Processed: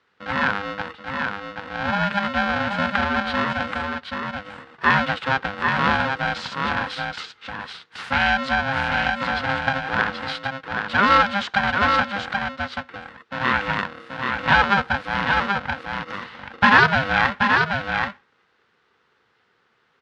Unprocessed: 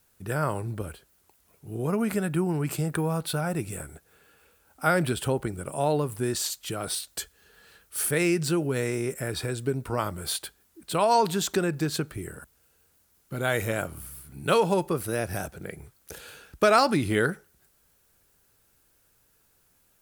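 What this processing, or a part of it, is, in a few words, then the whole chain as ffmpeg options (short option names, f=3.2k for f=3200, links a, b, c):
ring modulator pedal into a guitar cabinet: -af "aecho=1:1:780:0.596,aeval=exprs='val(0)*sgn(sin(2*PI*400*n/s))':c=same,highpass=100,equalizer=f=310:t=q:w=4:g=-10,equalizer=f=600:t=q:w=4:g=-7,equalizer=f=1.5k:t=q:w=4:g=10,lowpass=f=3.9k:w=0.5412,lowpass=f=3.9k:w=1.3066,volume=4.5dB"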